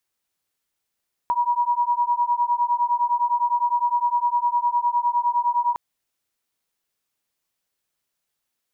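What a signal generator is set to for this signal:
two tones that beat 957 Hz, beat 9.8 Hz, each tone −21.5 dBFS 4.46 s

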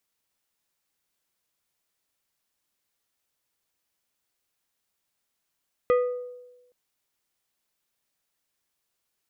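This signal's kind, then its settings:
struck glass plate, length 0.82 s, lowest mode 494 Hz, decay 1.08 s, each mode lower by 8.5 dB, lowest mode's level −16 dB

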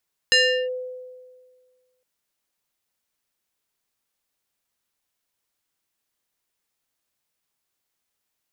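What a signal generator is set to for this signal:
two-operator FM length 1.71 s, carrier 506 Hz, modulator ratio 4.55, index 2.1, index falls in 0.37 s linear, decay 1.72 s, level −12 dB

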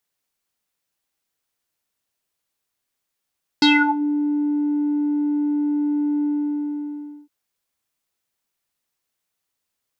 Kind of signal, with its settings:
subtractive voice square D4 12 dB per octave, low-pass 430 Hz, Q 8.1, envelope 3.5 octaves, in 0.40 s, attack 3.1 ms, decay 0.29 s, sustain −11.5 dB, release 1.04 s, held 2.62 s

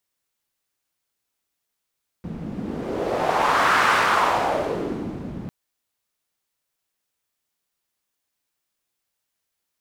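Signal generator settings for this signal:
wind from filtered noise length 3.25 s, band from 180 Hz, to 1,300 Hz, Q 2.1, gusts 1, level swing 14 dB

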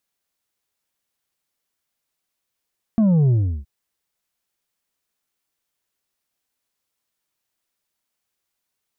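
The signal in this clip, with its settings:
bass drop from 230 Hz, over 0.67 s, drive 5 dB, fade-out 0.35 s, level −13.5 dB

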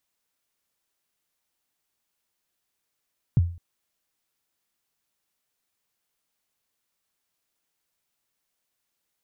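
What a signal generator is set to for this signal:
synth kick length 0.21 s, from 160 Hz, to 86 Hz, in 28 ms, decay 0.41 s, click off, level −12 dB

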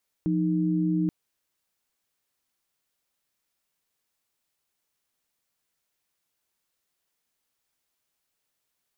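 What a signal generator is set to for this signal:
held notes F3/D#4 sine, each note −24.5 dBFS 0.83 s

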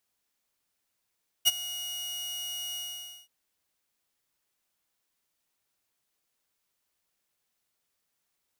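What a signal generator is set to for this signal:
note with an ADSR envelope saw 2,890 Hz, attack 28 ms, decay 26 ms, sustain −17.5 dB, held 1.31 s, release 518 ms −14 dBFS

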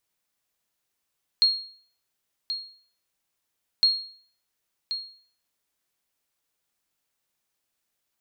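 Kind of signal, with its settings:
ping with an echo 4,270 Hz, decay 0.50 s, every 2.41 s, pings 2, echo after 1.08 s, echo −11 dB −12.5 dBFS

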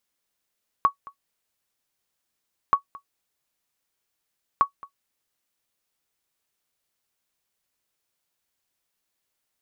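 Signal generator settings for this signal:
ping with an echo 1,120 Hz, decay 0.10 s, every 1.88 s, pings 3, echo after 0.22 s, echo −22.5 dB −8.5 dBFS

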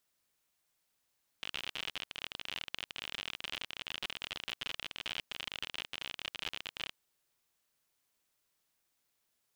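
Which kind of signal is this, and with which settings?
Geiger counter clicks 53 per second −22.5 dBFS 5.47 s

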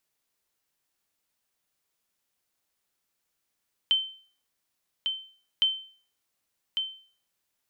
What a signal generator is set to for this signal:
ping with an echo 3,090 Hz, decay 0.45 s, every 1.71 s, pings 2, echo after 1.15 s, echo −6 dB −16 dBFS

